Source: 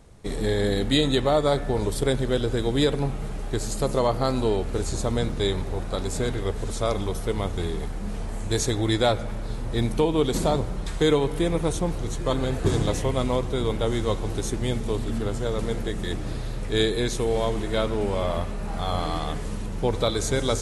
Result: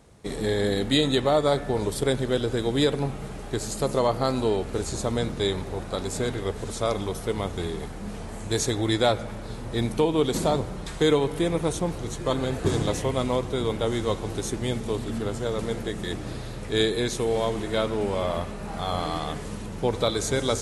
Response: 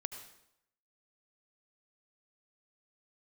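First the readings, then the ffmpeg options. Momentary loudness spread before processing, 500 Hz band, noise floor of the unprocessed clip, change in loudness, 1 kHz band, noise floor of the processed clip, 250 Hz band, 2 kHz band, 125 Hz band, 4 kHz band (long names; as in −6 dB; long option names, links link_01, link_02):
9 LU, 0.0 dB, −31 dBFS, −0.5 dB, 0.0 dB, −36 dBFS, −0.5 dB, 0.0 dB, −2.5 dB, 0.0 dB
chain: -af "highpass=frequency=100:poles=1"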